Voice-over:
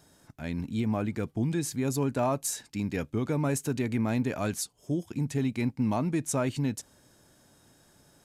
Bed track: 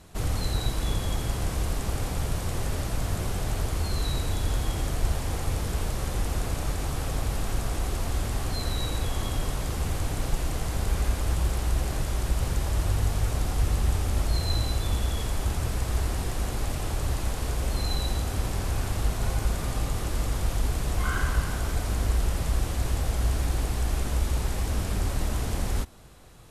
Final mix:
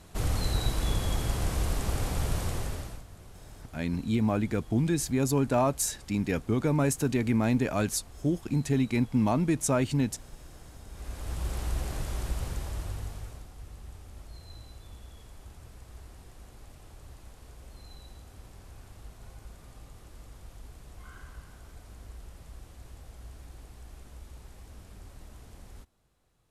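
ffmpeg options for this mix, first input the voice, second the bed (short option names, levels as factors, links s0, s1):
-filter_complex "[0:a]adelay=3350,volume=1.33[s0];[1:a]volume=5.01,afade=t=out:st=2.42:d=0.62:silence=0.105925,afade=t=in:st=10.91:d=0.68:silence=0.177828,afade=t=out:st=12.22:d=1.27:silence=0.16788[s1];[s0][s1]amix=inputs=2:normalize=0"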